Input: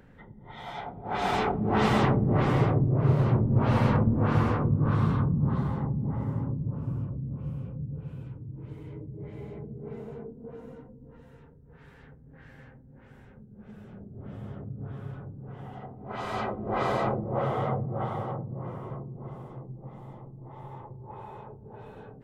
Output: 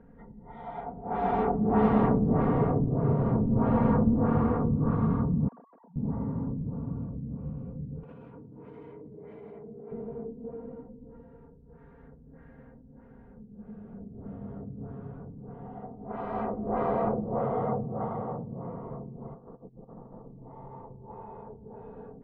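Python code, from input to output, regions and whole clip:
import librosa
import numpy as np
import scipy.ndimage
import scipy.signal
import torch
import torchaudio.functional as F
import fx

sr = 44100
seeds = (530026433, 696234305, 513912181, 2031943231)

y = fx.chain(x, sr, fx.sine_speech(),
    fx.lowpass(hz=1100.0, slope=12),
    fx.differentiator(), at=(5.48, 5.96))
y = fx.chain(y, sr, fx.highpass(hz=910.0, slope=6),
    fx.high_shelf(hz=3700.0, db=8.0),
    fx.env_flatten(amount_pct=100), at=(8.03, 9.92))
y = fx.chain(y, sr, fx.cheby_ripple(hz=1800.0, ripple_db=3),
    fx.over_compress(threshold_db=-47.0, ratio=-0.5), at=(19.34, 20.37))
y = scipy.signal.sosfilt(scipy.signal.butter(2, 1000.0, 'lowpass', fs=sr, output='sos'), y)
y = y + 0.56 * np.pad(y, (int(4.3 * sr / 1000.0), 0))[:len(y)]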